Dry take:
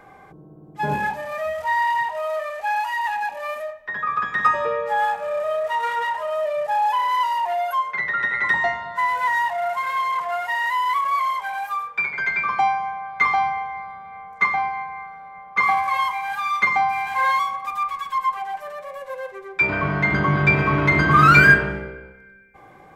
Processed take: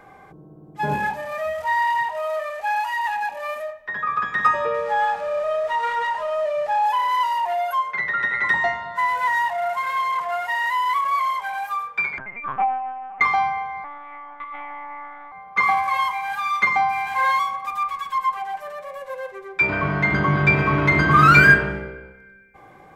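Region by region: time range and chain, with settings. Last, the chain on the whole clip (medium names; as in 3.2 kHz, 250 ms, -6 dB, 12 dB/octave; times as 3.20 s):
4.74–6.84 s: jump at every zero crossing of -38.5 dBFS + distance through air 52 m
12.18–13.21 s: median filter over 25 samples + steep low-pass 2.3 kHz + LPC vocoder at 8 kHz pitch kept
13.84–15.32 s: compression 16:1, threshold -30 dBFS + monotone LPC vocoder at 8 kHz 290 Hz
whole clip: none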